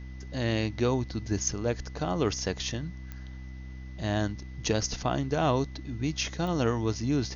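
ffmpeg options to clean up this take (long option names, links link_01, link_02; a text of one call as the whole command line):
ffmpeg -i in.wav -af "adeclick=threshold=4,bandreject=frequency=64.2:width_type=h:width=4,bandreject=frequency=128.4:width_type=h:width=4,bandreject=frequency=192.6:width_type=h:width=4,bandreject=frequency=256.8:width_type=h:width=4,bandreject=frequency=321:width_type=h:width=4,bandreject=frequency=2000:width=30,agate=range=-21dB:threshold=-33dB" out.wav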